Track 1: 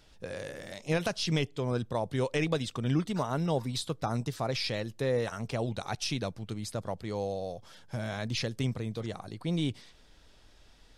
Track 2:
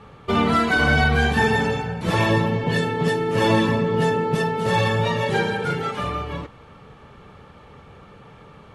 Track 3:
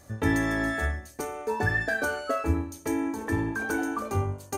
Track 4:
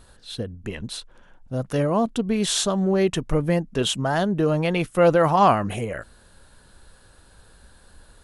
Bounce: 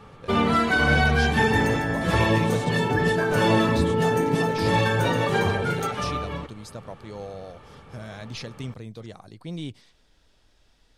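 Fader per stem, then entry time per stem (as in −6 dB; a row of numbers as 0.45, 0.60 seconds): −3.5, −2.0, −1.5, −19.0 decibels; 0.00, 0.00, 1.30, 0.00 seconds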